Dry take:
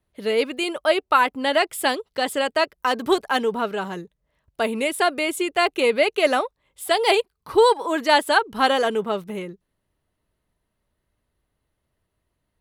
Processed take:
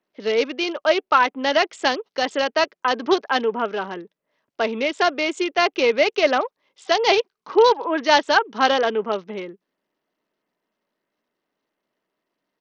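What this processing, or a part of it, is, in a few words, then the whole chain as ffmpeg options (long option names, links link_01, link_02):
Bluetooth headset: -af "highpass=frequency=220:width=0.5412,highpass=frequency=220:width=1.3066,aresample=16000,aresample=44100,volume=1dB" -ar 48000 -c:a sbc -b:a 64k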